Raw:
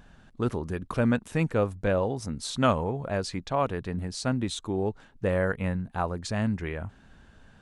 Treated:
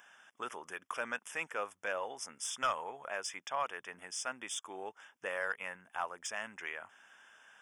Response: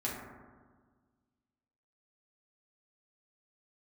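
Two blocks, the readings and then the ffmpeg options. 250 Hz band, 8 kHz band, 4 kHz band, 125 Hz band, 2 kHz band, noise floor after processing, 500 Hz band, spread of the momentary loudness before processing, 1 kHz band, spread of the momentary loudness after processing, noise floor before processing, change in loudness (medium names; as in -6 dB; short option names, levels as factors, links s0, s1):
-26.5 dB, -0.5 dB, -6.0 dB, -36.0 dB, -2.0 dB, -77 dBFS, -14.0 dB, 7 LU, -6.0 dB, 10 LU, -55 dBFS, -10.5 dB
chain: -filter_complex "[0:a]highpass=1100,asplit=2[s0][s1];[s1]acompressor=threshold=0.00355:ratio=6,volume=0.75[s2];[s0][s2]amix=inputs=2:normalize=0,asoftclip=type=tanh:threshold=0.0841,asuperstop=centerf=4200:order=20:qfactor=3.1,volume=0.841"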